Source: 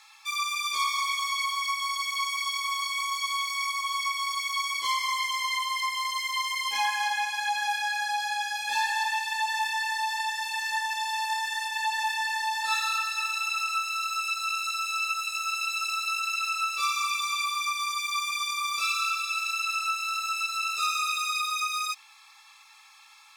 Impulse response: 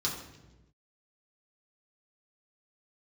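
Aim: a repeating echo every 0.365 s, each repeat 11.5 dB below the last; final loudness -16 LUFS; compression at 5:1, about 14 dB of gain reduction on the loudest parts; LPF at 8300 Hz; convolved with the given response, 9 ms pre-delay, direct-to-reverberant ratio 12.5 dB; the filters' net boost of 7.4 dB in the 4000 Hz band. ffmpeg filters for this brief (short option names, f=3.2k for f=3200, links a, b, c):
-filter_complex "[0:a]lowpass=8.3k,equalizer=f=4k:t=o:g=9,acompressor=threshold=-37dB:ratio=5,aecho=1:1:365|730|1095:0.266|0.0718|0.0194,asplit=2[a][b];[1:a]atrim=start_sample=2205,adelay=9[c];[b][c]afir=irnorm=-1:irlink=0,volume=-18dB[d];[a][d]amix=inputs=2:normalize=0,volume=19.5dB"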